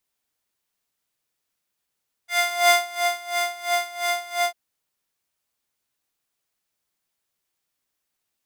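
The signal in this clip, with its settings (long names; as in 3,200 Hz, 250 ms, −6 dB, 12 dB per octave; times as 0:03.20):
subtractive patch with tremolo F5, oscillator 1 square, interval 0 semitones, detune 11 cents, oscillator 2 level −6 dB, sub −14 dB, noise −22.5 dB, filter highpass, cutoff 820 Hz, Q 2, filter envelope 1 octave, attack 250 ms, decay 0.40 s, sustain −10.5 dB, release 0.08 s, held 2.17 s, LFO 2.9 Hz, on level 18 dB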